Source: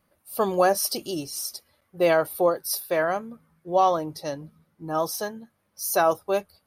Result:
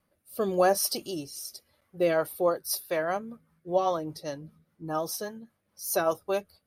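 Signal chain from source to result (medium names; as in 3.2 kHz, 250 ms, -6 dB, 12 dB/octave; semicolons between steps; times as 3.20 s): rotary cabinet horn 0.9 Hz, later 5 Hz, at 1.67 s; trim -1.5 dB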